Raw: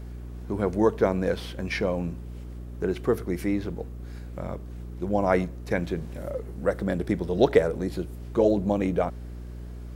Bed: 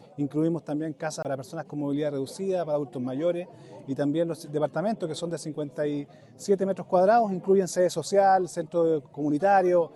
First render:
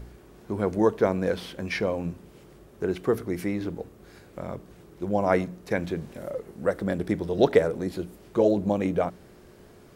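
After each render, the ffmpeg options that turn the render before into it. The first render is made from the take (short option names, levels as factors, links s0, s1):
-af "bandreject=f=60:t=h:w=4,bandreject=f=120:t=h:w=4,bandreject=f=180:t=h:w=4,bandreject=f=240:t=h:w=4,bandreject=f=300:t=h:w=4"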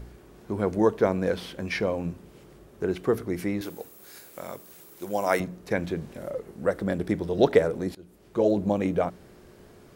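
-filter_complex "[0:a]asettb=1/sr,asplit=3[s0][s1][s2];[s0]atrim=end=3.614[s3];[s1]atrim=start=3.61:end=5.4,asetpts=PTS-STARTPTS,afade=t=in:d=0.004:c=qsin,afade=t=out:st=1.786:d=0.004:c=qsin,aemphasis=mode=production:type=riaa[s4];[s2]atrim=start=5.396[s5];[s3][s4]acrossfade=d=0.004:c1=hsin:c2=qsin[s6];[s6][s5]acrossfade=d=0.004:c1=qsin:c2=hsin,asplit=2[s7][s8];[s7]atrim=end=7.95,asetpts=PTS-STARTPTS,afade=t=out:st=7.946:d=0.004:c=hsin:silence=0.0794328[s9];[s8]atrim=start=7.95,asetpts=PTS-STARTPTS,afade=t=in:d=0.6:silence=0.0794328[s10];[s9][s10]concat=n=2:v=0:a=1"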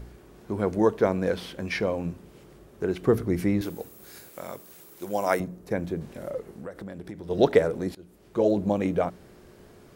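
-filter_complex "[0:a]asettb=1/sr,asplit=3[s0][s1][s2];[s0]atrim=end=3.024[s3];[s1]atrim=start=3.02:end=4.29,asetpts=PTS-STARTPTS,afade=t=in:d=0.004:c=qsin,afade=t=out:st=1.266:d=0.004:c=qsin,lowshelf=f=250:g=9[s4];[s2]atrim=start=4.286[s5];[s3][s4]acrossfade=d=0.004:c1=hsin:c2=qsin[s6];[s6][s5]acrossfade=d=0.004:c1=qsin:c2=hsin,asettb=1/sr,asplit=3[s7][s8][s9];[s7]atrim=end=5.344[s10];[s8]atrim=start=5.34:end=6.01,asetpts=PTS-STARTPTS,afade=t=in:d=0.004:c=qsin,afade=t=out:st=0.666:d=0.004:c=qsin,equalizer=f=2900:t=o:w=2.8:g=-8[s11];[s9]atrim=start=6.006[s12];[s10][s11]acrossfade=d=0.004:c1=hsin:c2=qsin[s13];[s13][s12]acrossfade=d=0.004:c1=qsin:c2=hsin,asplit=3[s14][s15][s16];[s14]afade=t=out:st=6.54:d=0.02[s17];[s15]acompressor=threshold=0.0158:ratio=4:attack=3.2:release=140:knee=1:detection=peak,afade=t=in:st=6.54:d=0.02,afade=t=out:st=7.29:d=0.02[s18];[s16]afade=t=in:st=7.29:d=0.02[s19];[s17][s18][s19]amix=inputs=3:normalize=0"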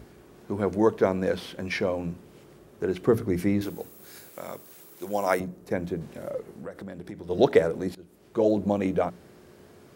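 -af "highpass=74,bandreject=f=60:t=h:w=6,bandreject=f=120:t=h:w=6,bandreject=f=180:t=h:w=6"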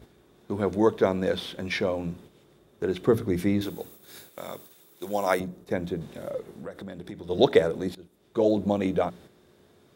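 -af "agate=range=0.447:threshold=0.00447:ratio=16:detection=peak,equalizer=f=3600:w=7.6:g=11"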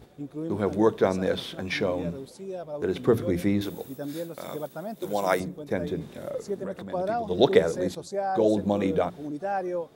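-filter_complex "[1:a]volume=0.376[s0];[0:a][s0]amix=inputs=2:normalize=0"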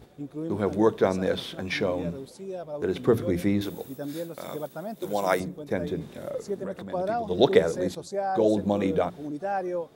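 -af anull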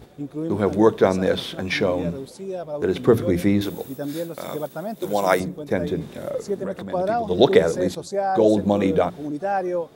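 -af "volume=1.88,alimiter=limit=0.794:level=0:latency=1"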